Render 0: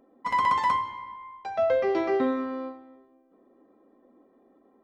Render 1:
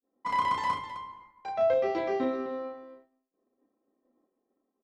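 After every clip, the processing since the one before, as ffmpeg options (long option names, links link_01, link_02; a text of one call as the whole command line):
ffmpeg -i in.wav -af "adynamicequalizer=threshold=0.0112:dfrequency=1400:dqfactor=0.82:tfrequency=1400:tqfactor=0.82:attack=5:release=100:ratio=0.375:range=2.5:mode=cutabove:tftype=bell,aecho=1:1:32.07|259.5:0.708|0.282,agate=range=-33dB:threshold=-47dB:ratio=3:detection=peak,volume=-3.5dB" out.wav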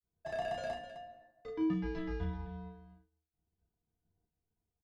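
ffmpeg -i in.wav -filter_complex "[0:a]afreqshift=-340,asplit=2[link_01][link_02];[link_02]adelay=13,volume=-10.5dB[link_03];[link_01][link_03]amix=inputs=2:normalize=0,volume=-8.5dB" out.wav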